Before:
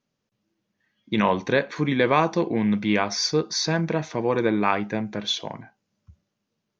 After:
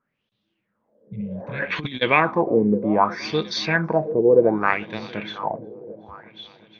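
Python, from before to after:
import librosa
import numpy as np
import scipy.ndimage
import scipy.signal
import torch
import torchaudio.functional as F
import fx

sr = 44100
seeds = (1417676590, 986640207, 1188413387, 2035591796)

p1 = fx.spec_repair(x, sr, seeds[0], start_s=0.73, length_s=0.86, low_hz=200.0, high_hz=2000.0, source='both')
p2 = fx.power_curve(p1, sr, exponent=1.4, at=(4.58, 5.13))
p3 = p2 + fx.echo_heads(p2, sr, ms=363, heads='first and second', feedback_pct=53, wet_db=-20.0, dry=0)
p4 = fx.filter_lfo_lowpass(p3, sr, shape='sine', hz=0.65, low_hz=420.0, high_hz=3700.0, q=5.9)
p5 = fx.over_compress(p4, sr, threshold_db=-27.0, ratio=-0.5, at=(1.6, 2.01), fade=0.02)
y = p5 * librosa.db_to_amplitude(-1.0)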